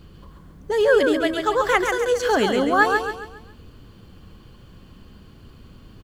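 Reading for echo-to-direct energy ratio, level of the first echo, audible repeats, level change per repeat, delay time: −4.5 dB, −5.0 dB, 4, −8.0 dB, 137 ms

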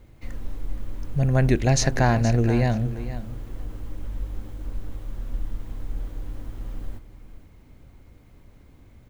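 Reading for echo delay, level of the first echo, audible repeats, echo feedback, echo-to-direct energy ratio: 471 ms, −13.5 dB, 2, 15%, −13.5 dB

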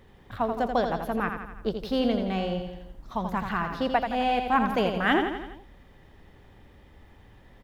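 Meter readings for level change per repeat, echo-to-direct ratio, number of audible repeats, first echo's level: −5.0 dB, −5.0 dB, 5, −6.5 dB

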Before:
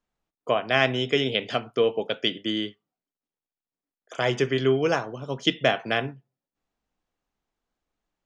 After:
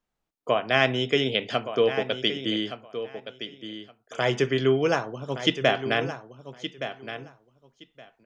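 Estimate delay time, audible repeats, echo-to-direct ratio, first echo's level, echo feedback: 1,169 ms, 2, −11.0 dB, −11.0 dB, 16%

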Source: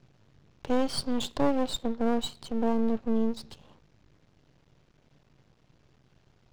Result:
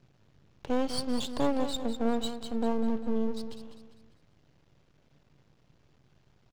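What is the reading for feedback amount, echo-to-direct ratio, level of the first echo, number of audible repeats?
41%, −9.0 dB, −10.0 dB, 4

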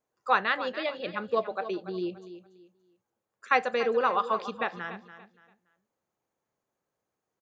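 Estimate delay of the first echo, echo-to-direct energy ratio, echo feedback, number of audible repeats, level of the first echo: 287 ms, −12.5 dB, 28%, 2, −13.0 dB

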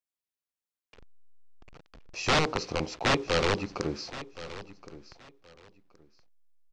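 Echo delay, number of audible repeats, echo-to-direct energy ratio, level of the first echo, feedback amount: 1,072 ms, 2, −15.5 dB, −15.5 dB, 21%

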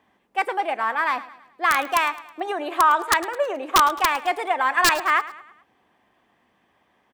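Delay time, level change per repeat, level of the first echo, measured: 107 ms, −6.5 dB, −17.0 dB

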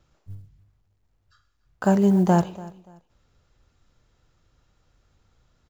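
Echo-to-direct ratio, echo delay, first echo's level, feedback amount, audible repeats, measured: −19.5 dB, 289 ms, −20.0 dB, 26%, 2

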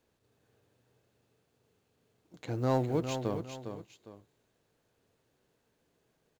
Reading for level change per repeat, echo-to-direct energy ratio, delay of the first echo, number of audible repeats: −9.5 dB, −7.5 dB, 406 ms, 2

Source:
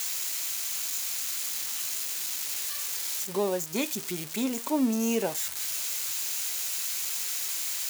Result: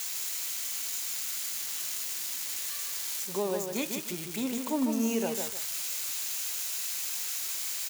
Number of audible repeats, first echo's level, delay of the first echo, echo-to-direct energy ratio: 2, −5.5 dB, 152 ms, −5.0 dB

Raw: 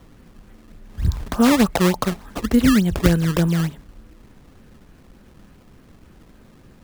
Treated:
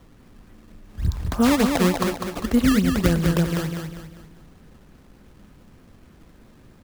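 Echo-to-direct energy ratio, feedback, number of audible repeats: −4.5 dB, 40%, 4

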